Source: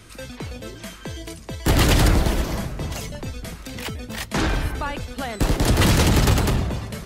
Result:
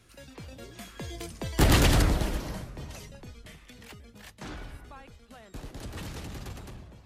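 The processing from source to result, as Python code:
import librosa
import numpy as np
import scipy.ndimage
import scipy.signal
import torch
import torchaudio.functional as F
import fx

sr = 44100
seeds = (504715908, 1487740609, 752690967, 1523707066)

y = fx.doppler_pass(x, sr, speed_mps=21, closest_m=9.3, pass_at_s=1.51)
y = fx.spec_box(y, sr, start_s=3.47, length_s=0.25, low_hz=1700.0, high_hz=3700.0, gain_db=7)
y = y * librosa.db_to_amplitude(-2.5)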